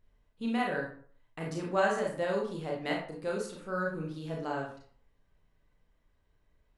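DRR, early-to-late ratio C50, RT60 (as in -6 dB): -2.0 dB, 4.0 dB, 0.50 s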